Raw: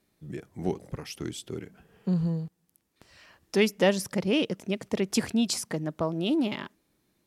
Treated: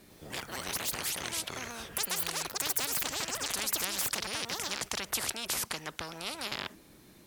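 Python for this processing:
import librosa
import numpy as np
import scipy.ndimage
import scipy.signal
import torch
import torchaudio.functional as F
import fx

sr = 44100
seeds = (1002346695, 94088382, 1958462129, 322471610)

y = fx.echo_pitch(x, sr, ms=100, semitones=6, count=2, db_per_echo=-3.0)
y = fx.spectral_comp(y, sr, ratio=10.0)
y = F.gain(torch.from_numpy(y), -3.5).numpy()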